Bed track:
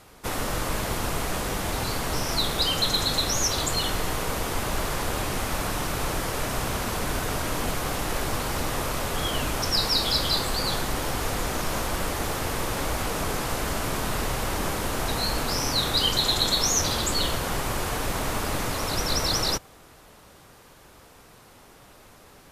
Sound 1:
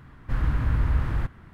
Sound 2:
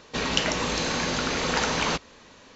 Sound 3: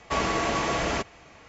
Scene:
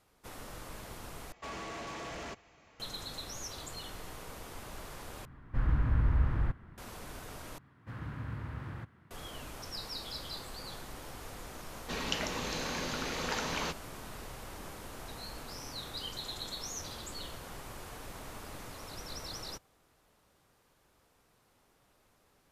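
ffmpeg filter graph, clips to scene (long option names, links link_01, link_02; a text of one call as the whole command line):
ffmpeg -i bed.wav -i cue0.wav -i cue1.wav -i cue2.wav -filter_complex "[1:a]asplit=2[link_01][link_02];[0:a]volume=-18dB[link_03];[3:a]asoftclip=type=tanh:threshold=-27.5dB[link_04];[link_01]highshelf=frequency=3100:gain=-9[link_05];[link_02]highpass=frequency=89:width=0.5412,highpass=frequency=89:width=1.3066[link_06];[link_03]asplit=4[link_07][link_08][link_09][link_10];[link_07]atrim=end=1.324[link_11];[link_04]atrim=end=1.48,asetpts=PTS-STARTPTS,volume=-11dB[link_12];[link_08]atrim=start=2.796:end=5.254[link_13];[link_05]atrim=end=1.53,asetpts=PTS-STARTPTS,volume=-4.5dB[link_14];[link_09]atrim=start=6.776:end=7.584[link_15];[link_06]atrim=end=1.53,asetpts=PTS-STARTPTS,volume=-11dB[link_16];[link_10]atrim=start=9.106[link_17];[2:a]atrim=end=2.55,asetpts=PTS-STARTPTS,volume=-10dB,afade=type=in:duration=0.004:curve=hsin,afade=type=out:start_time=2.546:duration=0.004:curve=hsin,adelay=11750[link_18];[link_11][link_12]acrossfade=duration=0.004:curve1=hsin:curve2=hsin[link_19];[link_19][link_13]acrossfade=duration=0.004:curve1=hsin:curve2=hsin[link_20];[link_20][link_14]acrossfade=duration=0.004:curve1=hsin:curve2=hsin[link_21];[link_21][link_15]acrossfade=duration=0.004:curve1=hsin:curve2=hsin[link_22];[link_22][link_16]acrossfade=duration=0.004:curve1=hsin:curve2=hsin[link_23];[link_23][link_17]acrossfade=duration=0.004:curve1=hsin:curve2=hsin[link_24];[link_24][link_18]amix=inputs=2:normalize=0" out.wav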